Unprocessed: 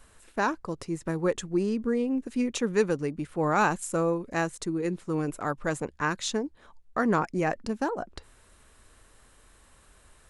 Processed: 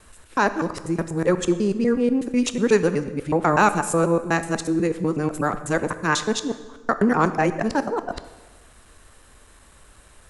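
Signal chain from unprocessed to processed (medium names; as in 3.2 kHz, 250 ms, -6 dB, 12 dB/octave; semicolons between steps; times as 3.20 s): time reversed locally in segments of 123 ms; plate-style reverb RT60 1.3 s, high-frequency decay 0.8×, DRR 10.5 dB; trim +6.5 dB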